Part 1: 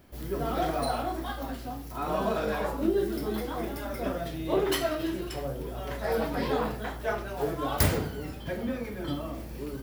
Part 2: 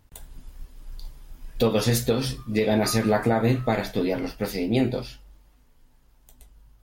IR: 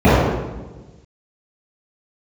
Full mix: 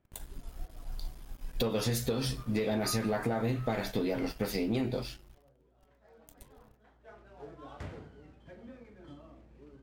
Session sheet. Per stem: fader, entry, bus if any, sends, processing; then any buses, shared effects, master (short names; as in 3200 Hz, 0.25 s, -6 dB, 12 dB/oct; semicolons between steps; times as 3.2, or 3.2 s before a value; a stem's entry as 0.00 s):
-17.5 dB, 0.00 s, no send, median filter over 9 samples; LPF 6600 Hz 12 dB/oct; auto duck -14 dB, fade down 0.40 s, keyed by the second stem
-4.0 dB, 0.00 s, no send, sample leveller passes 1; crossover distortion -53 dBFS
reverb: off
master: compressor 6:1, threshold -28 dBFS, peak gain reduction 9 dB